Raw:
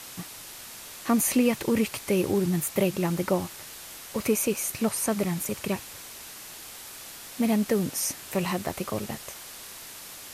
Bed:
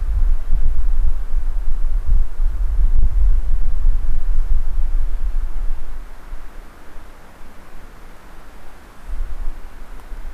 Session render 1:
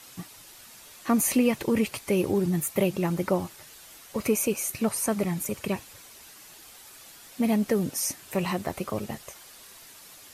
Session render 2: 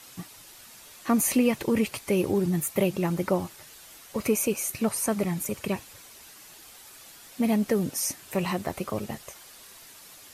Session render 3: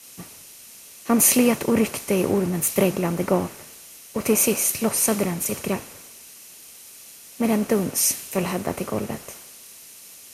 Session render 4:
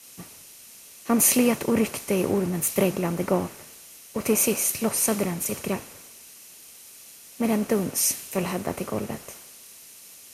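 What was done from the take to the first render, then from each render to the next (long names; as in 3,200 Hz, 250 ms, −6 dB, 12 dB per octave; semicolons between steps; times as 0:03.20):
broadband denoise 8 dB, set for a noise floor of −43 dBFS
no processing that can be heard
compressor on every frequency bin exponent 0.6; multiband upward and downward expander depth 100%
level −2.5 dB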